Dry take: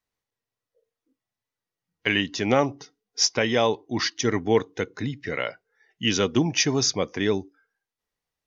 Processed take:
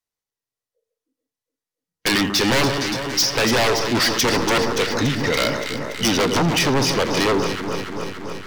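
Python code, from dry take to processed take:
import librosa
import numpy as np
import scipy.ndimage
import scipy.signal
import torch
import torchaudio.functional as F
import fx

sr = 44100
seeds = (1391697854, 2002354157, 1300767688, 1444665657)

p1 = fx.env_lowpass_down(x, sr, base_hz=1800.0, full_db=-20.0)
p2 = fx.backlash(p1, sr, play_db=-21.0)
p3 = p1 + (p2 * 10.0 ** (-7.5 / 20.0))
p4 = fx.bass_treble(p3, sr, bass_db=-2, treble_db=7)
p5 = p4 + 10.0 ** (-19.5 / 20.0) * np.pad(p4, (int(83 * sr / 1000.0), 0))[:len(p4)]
p6 = 10.0 ** (-20.0 / 20.0) * (np.abs((p5 / 10.0 ** (-20.0 / 20.0) + 3.0) % 4.0 - 2.0) - 1.0)
p7 = fx.echo_alternate(p6, sr, ms=143, hz=1400.0, feedback_pct=84, wet_db=-9)
p8 = fx.dynamic_eq(p7, sr, hz=4600.0, q=0.85, threshold_db=-45.0, ratio=4.0, max_db=7)
y = fx.leveller(p8, sr, passes=3)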